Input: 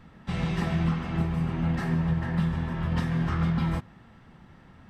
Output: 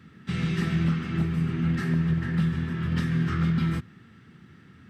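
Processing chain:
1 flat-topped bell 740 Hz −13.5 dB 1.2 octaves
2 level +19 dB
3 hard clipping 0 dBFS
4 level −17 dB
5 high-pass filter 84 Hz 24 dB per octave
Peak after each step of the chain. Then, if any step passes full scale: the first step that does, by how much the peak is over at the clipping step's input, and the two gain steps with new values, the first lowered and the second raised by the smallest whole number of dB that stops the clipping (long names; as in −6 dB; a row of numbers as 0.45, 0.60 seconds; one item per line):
−15.5, +3.5, 0.0, −17.0, −13.5 dBFS
step 2, 3.5 dB
step 2 +15 dB, step 4 −13 dB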